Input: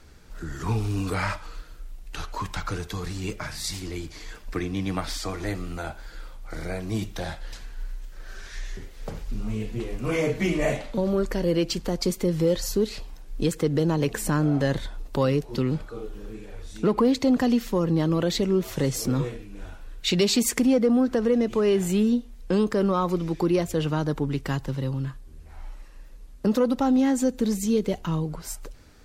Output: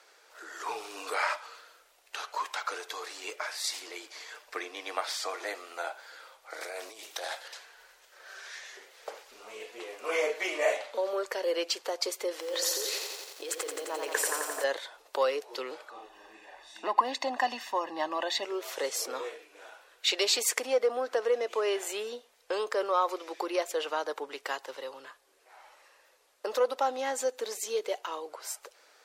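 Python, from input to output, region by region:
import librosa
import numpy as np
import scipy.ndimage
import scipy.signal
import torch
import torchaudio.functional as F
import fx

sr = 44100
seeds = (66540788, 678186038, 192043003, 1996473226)

y = fx.chain(x, sr, fx.high_shelf(hz=5300.0, db=10.5),
    fx.over_compress(threshold_db=-33.0, ratio=-1.0),
    fx.doppler_dist(depth_ms=0.17), at=(6.61, 7.48))
y = fx.chain(y, sr, fx.over_compress(threshold_db=-27.0, ratio=-1.0),
    fx.brickwall_highpass(low_hz=260.0),
    fx.echo_crushed(ms=87, feedback_pct=80, bits=8, wet_db=-4.5), at=(12.31, 14.64))
y = fx.chain(y, sr, fx.lowpass(hz=3700.0, slope=6),
    fx.peak_eq(hz=82.0, db=9.0, octaves=2.6),
    fx.comb(ms=1.1, depth=0.86), at=(15.9, 18.45))
y = scipy.signal.sosfilt(scipy.signal.cheby2(4, 50, 190.0, 'highpass', fs=sr, output='sos'), y)
y = fx.high_shelf(y, sr, hz=8500.0, db=-4.5)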